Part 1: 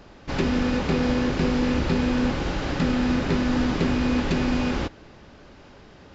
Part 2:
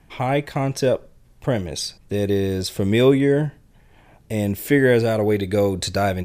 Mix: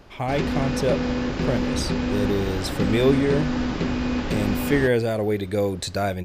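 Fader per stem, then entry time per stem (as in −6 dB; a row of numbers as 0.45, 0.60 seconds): −2.0, −4.0 decibels; 0.00, 0.00 seconds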